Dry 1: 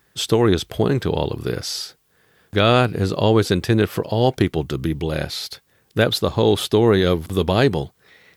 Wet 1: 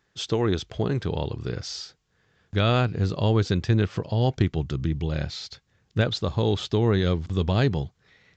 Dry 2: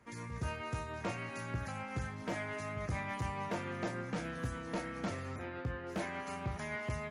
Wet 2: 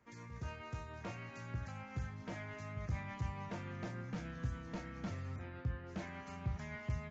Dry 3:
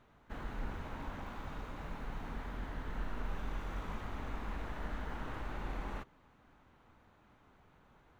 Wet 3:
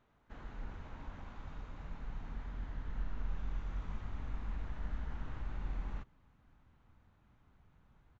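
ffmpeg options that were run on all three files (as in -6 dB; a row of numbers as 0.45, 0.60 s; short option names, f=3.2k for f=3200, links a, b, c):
-af "asubboost=boost=3:cutoff=210,aresample=16000,aresample=44100,volume=-7.5dB"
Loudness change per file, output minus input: -5.5, -4.5, -1.5 LU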